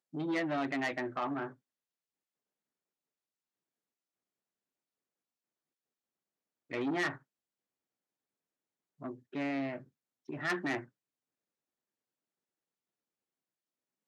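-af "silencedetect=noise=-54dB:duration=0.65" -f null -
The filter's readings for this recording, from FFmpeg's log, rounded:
silence_start: 1.54
silence_end: 6.70 | silence_duration: 5.16
silence_start: 7.18
silence_end: 9.00 | silence_duration: 1.83
silence_start: 10.86
silence_end: 14.07 | silence_duration: 3.22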